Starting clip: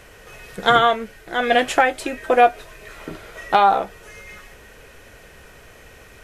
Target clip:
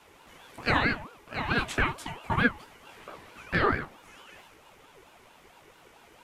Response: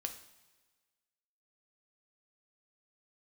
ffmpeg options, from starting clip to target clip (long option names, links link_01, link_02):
-af "flanger=delay=15.5:depth=7.4:speed=2.9,bandreject=frequency=65.38:width_type=h:width=4,bandreject=frequency=130.76:width_type=h:width=4,bandreject=frequency=196.14:width_type=h:width=4,bandreject=frequency=261.52:width_type=h:width=4,bandreject=frequency=326.9:width_type=h:width=4,bandreject=frequency=392.28:width_type=h:width=4,bandreject=frequency=457.66:width_type=h:width=4,aeval=exprs='val(0)*sin(2*PI*670*n/s+670*0.45/4.5*sin(2*PI*4.5*n/s))':channel_layout=same,volume=-4.5dB"